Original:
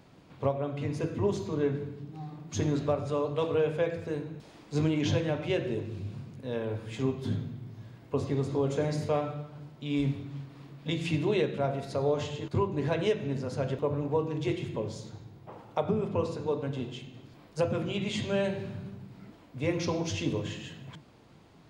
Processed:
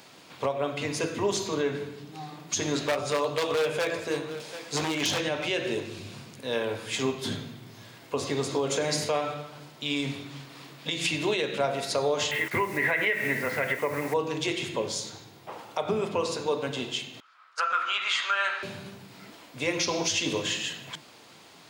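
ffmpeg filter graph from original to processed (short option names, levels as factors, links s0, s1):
-filter_complex "[0:a]asettb=1/sr,asplit=3[s0][s1][s2];[s0]atrim=end=2.874[s3];[s1]atrim=start=2.87:end=5.27,asetpts=PTS-STARTPTS,afade=t=in:d=0.004:c=qsin,afade=t=out:st=2.396:d=0.004:c=qsin,aeval=exprs='0.0794*(abs(mod(val(0)/0.0794+3,4)-2)-1)':c=same,asplit=2[s4][s5];[s5]adelay=15,volume=0.282[s6];[s4][s6]amix=inputs=2:normalize=0,atrim=end_sample=105840,aecho=1:1:739:0.141,atrim=end_sample=105840[s7];[s2]atrim=start=5.266[s8];[s3][s7]acrossfade=d=0.004:c1=hsin:c2=qsin[s9];[s9][s8]acrossfade=d=0.004:c1=qsin:c2=hsin,asettb=1/sr,asplit=3[s10][s11][s12];[s10]atrim=end=12.314[s13];[s11]atrim=start=12.31:end=14.14,asetpts=PTS-STARTPTS,afade=t=in:d=0.004:c=qsin,afade=t=out:st=1.826:d=0.004:c=qsin,lowpass=f=2000:t=q:w=14,acrusher=bits=8:mix=0:aa=0.5[s14];[s12]atrim=start=14.136[s15];[s13][s14]acrossfade=d=0.004:c1=hsin:c2=qsin[s16];[s16][s15]acrossfade=d=0.004:c1=qsin:c2=hsin,asettb=1/sr,asplit=3[s17][s18][s19];[s17]atrim=end=17.204[s20];[s18]atrim=start=17.2:end=18.63,asetpts=PTS-STARTPTS,afade=t=in:d=0.004:c=qsin,afade=t=out:st=1.426:d=0.004:c=qsin,agate=range=0.224:threshold=0.00631:ratio=16:release=100:detection=peak,highpass=f=1300:t=q:w=9.6,aemphasis=mode=reproduction:type=75fm[s21];[s19]atrim=start=18.626[s22];[s20][s21]acrossfade=d=0.004:c1=hsin:c2=qsin[s23];[s23][s22]acrossfade=d=0.004:c1=qsin:c2=hsin,highpass=f=590:p=1,highshelf=f=2500:g=10,alimiter=level_in=1.06:limit=0.0631:level=0:latency=1:release=134,volume=0.944,volume=2.51"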